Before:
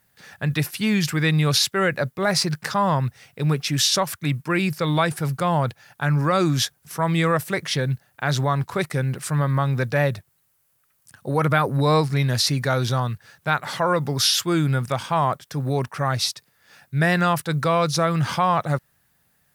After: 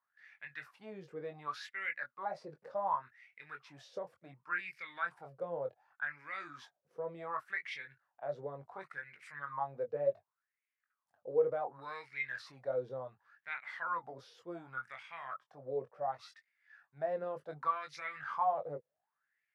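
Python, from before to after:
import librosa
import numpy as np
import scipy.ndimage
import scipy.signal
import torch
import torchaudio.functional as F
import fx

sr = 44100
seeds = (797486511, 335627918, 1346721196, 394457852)

y = fx.chorus_voices(x, sr, voices=2, hz=0.11, base_ms=22, depth_ms=1.8, mix_pct=35)
y = fx.transient(y, sr, attack_db=8, sustain_db=3, at=(17.16, 18.19), fade=0.02)
y = fx.wah_lfo(y, sr, hz=0.68, low_hz=470.0, high_hz=2200.0, q=8.7)
y = y * librosa.db_to_amplitude(-1.0)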